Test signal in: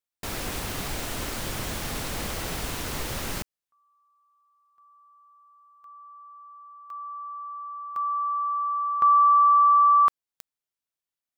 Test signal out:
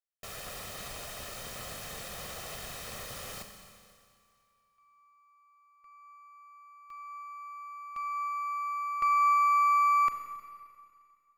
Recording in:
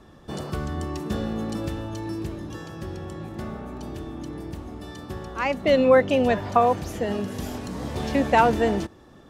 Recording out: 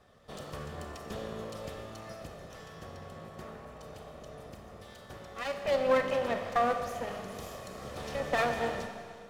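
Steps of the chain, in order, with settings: comb filter that takes the minimum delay 1.6 ms; bass shelf 120 Hz -9.5 dB; Schroeder reverb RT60 2.2 s, combs from 30 ms, DRR 5.5 dB; trim -8 dB

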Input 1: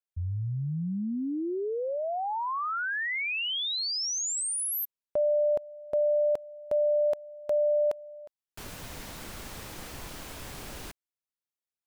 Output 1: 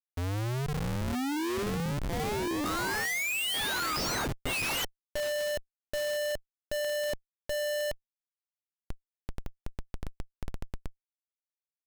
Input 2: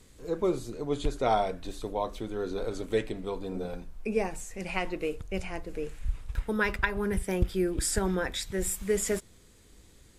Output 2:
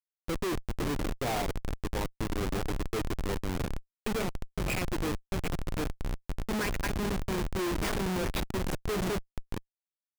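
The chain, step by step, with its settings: backward echo that repeats 660 ms, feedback 41%, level -12 dB; graphic EQ with 31 bands 315 Hz +7 dB, 630 Hz -4 dB, 2.5 kHz +11 dB, 8 kHz -10 dB; Schmitt trigger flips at -29 dBFS

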